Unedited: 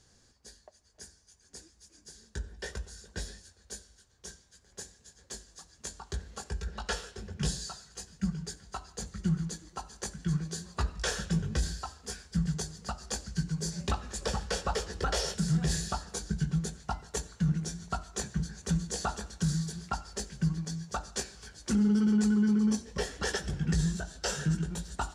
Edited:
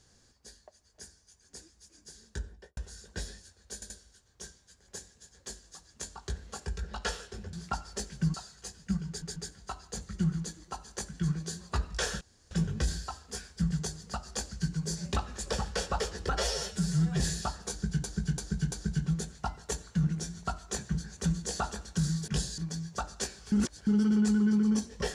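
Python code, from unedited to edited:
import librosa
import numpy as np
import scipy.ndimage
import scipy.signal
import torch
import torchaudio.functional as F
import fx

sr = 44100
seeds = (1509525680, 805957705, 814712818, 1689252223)

y = fx.studio_fade_out(x, sr, start_s=2.4, length_s=0.37)
y = fx.edit(y, sr, fx.stutter(start_s=3.74, slice_s=0.08, count=3),
    fx.swap(start_s=7.37, length_s=0.3, other_s=19.73, other_length_s=0.81),
    fx.stutter(start_s=8.41, slice_s=0.14, count=3),
    fx.insert_room_tone(at_s=11.26, length_s=0.3),
    fx.stretch_span(start_s=15.11, length_s=0.56, factor=1.5),
    fx.repeat(start_s=16.17, length_s=0.34, count=4),
    fx.reverse_span(start_s=21.48, length_s=0.35), tone=tone)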